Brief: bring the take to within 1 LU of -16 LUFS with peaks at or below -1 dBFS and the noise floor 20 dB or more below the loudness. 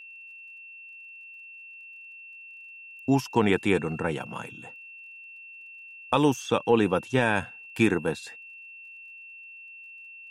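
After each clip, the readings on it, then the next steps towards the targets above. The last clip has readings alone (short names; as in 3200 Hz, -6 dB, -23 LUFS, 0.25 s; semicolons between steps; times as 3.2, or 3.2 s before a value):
ticks 24/s; steady tone 2700 Hz; tone level -43 dBFS; loudness -26.0 LUFS; peak -9.0 dBFS; loudness target -16.0 LUFS
-> de-click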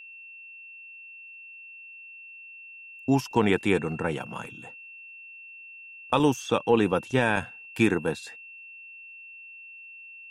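ticks 0/s; steady tone 2700 Hz; tone level -43 dBFS
-> notch 2700 Hz, Q 30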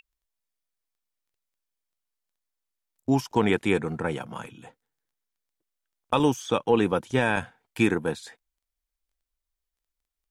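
steady tone none; loudness -25.5 LUFS; peak -9.0 dBFS; loudness target -16.0 LUFS
-> gain +9.5 dB; limiter -1 dBFS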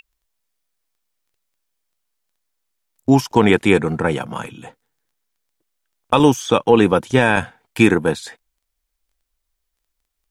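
loudness -16.5 LUFS; peak -1.0 dBFS; noise floor -76 dBFS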